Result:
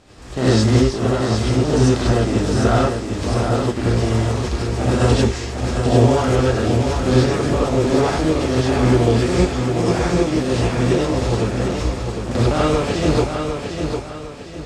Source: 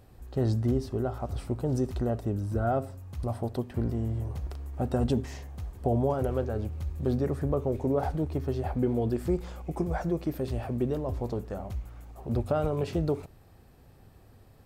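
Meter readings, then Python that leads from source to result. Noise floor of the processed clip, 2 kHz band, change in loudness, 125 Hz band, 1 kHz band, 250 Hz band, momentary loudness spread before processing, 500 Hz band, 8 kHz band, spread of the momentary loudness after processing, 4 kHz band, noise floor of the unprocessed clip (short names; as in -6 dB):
-32 dBFS, +21.0 dB, +12.5 dB, +12.5 dB, +13.5 dB, +12.5 dB, 9 LU, +12.5 dB, n/a, 8 LU, +24.0 dB, -55 dBFS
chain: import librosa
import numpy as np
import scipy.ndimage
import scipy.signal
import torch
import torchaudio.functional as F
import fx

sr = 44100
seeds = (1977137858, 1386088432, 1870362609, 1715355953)

y = fx.spec_flatten(x, sr, power=0.57)
y = scipy.signal.sosfilt(scipy.signal.butter(4, 7600.0, 'lowpass', fs=sr, output='sos'), y)
y = fx.peak_eq(y, sr, hz=280.0, db=4.5, octaves=1.2)
y = fx.echo_feedback(y, sr, ms=753, feedback_pct=37, wet_db=-6.0)
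y = fx.rev_gated(y, sr, seeds[0], gate_ms=120, shape='rising', drr_db=-7.5)
y = y * librosa.db_to_amplitude(1.5)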